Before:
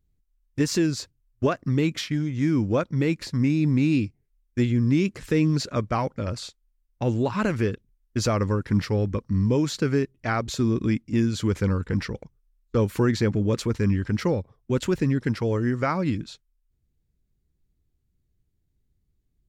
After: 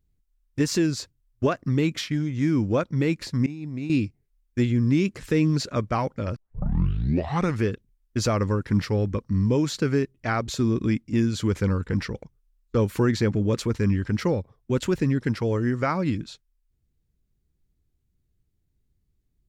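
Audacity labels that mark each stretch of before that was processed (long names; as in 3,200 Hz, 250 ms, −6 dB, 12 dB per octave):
3.460000	3.900000	downward expander −13 dBFS
6.360000	6.360000	tape start 1.27 s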